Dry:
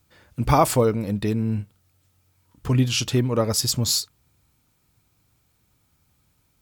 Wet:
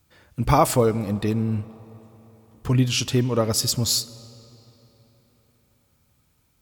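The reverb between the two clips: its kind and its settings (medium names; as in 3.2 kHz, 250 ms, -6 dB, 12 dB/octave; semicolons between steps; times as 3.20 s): algorithmic reverb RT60 4 s, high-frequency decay 0.75×, pre-delay 20 ms, DRR 19 dB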